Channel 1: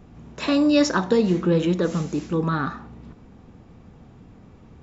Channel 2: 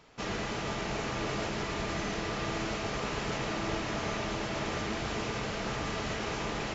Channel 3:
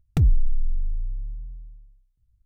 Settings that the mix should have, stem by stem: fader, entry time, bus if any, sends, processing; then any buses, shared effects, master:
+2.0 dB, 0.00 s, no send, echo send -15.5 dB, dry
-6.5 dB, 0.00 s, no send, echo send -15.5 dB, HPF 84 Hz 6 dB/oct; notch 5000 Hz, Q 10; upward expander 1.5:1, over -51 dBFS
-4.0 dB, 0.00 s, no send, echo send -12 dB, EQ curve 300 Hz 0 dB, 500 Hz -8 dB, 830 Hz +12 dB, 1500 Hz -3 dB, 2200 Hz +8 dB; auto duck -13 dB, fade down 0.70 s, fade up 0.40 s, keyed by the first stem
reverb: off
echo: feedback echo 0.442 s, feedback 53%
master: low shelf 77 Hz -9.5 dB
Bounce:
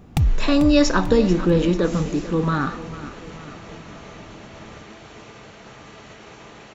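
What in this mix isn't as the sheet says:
stem 3 -4.0 dB -> +4.0 dB; master: missing low shelf 77 Hz -9.5 dB

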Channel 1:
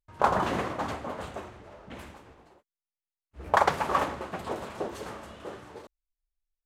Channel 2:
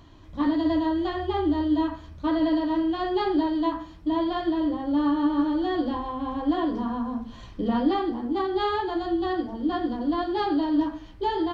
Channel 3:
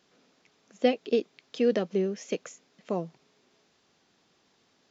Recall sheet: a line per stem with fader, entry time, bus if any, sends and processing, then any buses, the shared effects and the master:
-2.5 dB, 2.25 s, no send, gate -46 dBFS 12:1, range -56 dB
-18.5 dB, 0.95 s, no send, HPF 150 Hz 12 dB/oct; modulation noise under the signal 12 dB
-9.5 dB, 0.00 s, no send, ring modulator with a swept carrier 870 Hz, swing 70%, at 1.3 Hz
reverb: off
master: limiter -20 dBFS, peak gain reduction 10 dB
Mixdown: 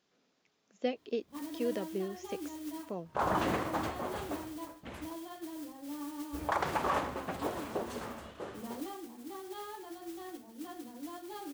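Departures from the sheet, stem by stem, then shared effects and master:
stem 1: entry 2.25 s -> 2.95 s; stem 3: missing ring modulator with a swept carrier 870 Hz, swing 70%, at 1.3 Hz

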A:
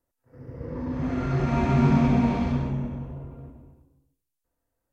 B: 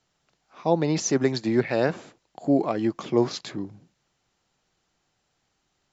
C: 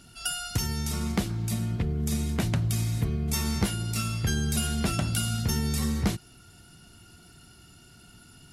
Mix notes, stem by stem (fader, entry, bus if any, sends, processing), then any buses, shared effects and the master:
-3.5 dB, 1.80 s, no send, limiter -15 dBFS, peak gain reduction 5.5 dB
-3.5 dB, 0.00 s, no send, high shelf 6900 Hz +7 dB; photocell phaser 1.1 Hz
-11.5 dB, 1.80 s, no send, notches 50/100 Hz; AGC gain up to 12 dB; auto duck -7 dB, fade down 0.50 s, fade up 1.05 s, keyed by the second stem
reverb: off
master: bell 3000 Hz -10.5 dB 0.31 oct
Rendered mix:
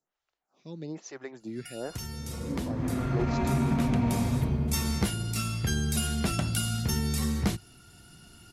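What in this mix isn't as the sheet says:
stem B -3.5 dB -> -12.5 dB; stem C: entry 1.80 s -> 1.40 s; master: missing bell 3000 Hz -10.5 dB 0.31 oct

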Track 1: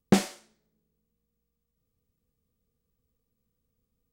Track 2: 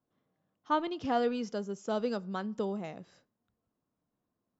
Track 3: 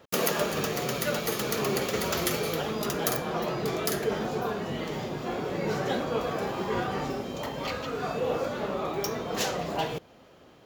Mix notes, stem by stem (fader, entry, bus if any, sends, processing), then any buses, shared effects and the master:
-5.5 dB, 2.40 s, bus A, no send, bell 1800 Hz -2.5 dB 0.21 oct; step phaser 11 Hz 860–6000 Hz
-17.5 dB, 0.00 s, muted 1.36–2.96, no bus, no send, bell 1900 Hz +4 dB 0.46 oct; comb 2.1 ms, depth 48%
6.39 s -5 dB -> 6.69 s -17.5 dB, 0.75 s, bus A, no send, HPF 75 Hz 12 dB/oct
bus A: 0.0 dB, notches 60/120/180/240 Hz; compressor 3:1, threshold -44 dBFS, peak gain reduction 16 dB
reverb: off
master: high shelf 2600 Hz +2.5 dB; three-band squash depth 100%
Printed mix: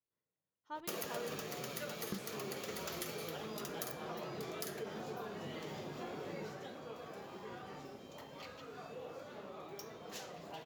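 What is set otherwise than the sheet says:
stem 1: entry 2.40 s -> 2.00 s; master: missing three-band squash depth 100%

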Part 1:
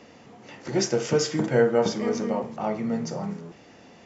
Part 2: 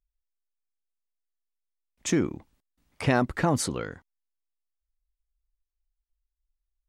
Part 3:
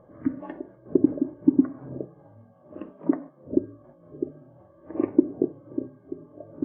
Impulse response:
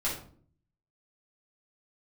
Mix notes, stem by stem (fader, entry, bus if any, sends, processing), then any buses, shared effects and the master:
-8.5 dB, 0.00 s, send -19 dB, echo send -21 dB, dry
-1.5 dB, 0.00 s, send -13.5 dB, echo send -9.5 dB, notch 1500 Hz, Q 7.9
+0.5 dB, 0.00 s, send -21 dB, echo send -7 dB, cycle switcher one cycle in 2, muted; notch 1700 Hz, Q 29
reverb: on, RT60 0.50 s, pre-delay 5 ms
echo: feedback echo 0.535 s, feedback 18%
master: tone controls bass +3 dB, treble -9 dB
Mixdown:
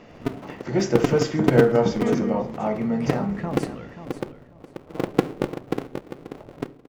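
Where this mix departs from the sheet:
stem 1 -8.5 dB -> +1.0 dB; stem 2 -1.5 dB -> -9.0 dB

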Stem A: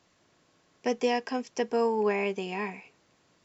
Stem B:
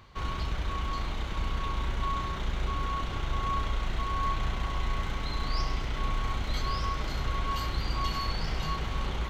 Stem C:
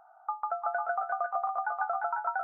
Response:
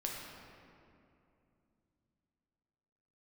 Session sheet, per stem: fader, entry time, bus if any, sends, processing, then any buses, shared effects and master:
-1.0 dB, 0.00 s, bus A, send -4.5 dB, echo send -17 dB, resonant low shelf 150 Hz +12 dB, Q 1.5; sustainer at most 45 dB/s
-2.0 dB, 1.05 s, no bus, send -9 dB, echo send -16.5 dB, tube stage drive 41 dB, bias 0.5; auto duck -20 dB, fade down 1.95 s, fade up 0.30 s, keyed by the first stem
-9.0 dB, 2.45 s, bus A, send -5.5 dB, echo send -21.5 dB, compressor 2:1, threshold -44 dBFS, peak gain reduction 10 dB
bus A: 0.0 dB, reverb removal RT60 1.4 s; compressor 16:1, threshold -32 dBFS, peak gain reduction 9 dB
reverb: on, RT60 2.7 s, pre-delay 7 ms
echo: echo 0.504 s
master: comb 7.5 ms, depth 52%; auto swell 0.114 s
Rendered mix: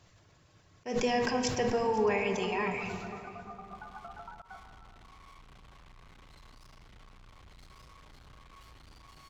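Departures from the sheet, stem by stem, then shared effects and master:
stem B -2.0 dB -> -14.0 dB; stem C: entry 2.45 s -> 2.15 s; master: missing comb 7.5 ms, depth 52%

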